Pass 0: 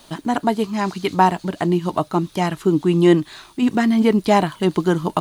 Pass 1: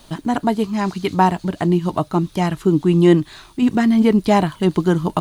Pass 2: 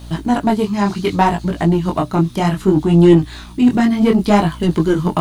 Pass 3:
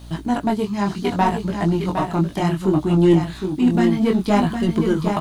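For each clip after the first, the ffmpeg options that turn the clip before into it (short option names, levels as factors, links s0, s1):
-af "lowshelf=f=140:g=11,volume=0.891"
-af "acontrast=87,aeval=exprs='val(0)+0.0282*(sin(2*PI*60*n/s)+sin(2*PI*2*60*n/s)/2+sin(2*PI*3*60*n/s)/3+sin(2*PI*4*60*n/s)/4+sin(2*PI*5*60*n/s)/5)':c=same,flanger=delay=17.5:depth=7.4:speed=0.65"
-af "aecho=1:1:761:0.473,volume=0.562"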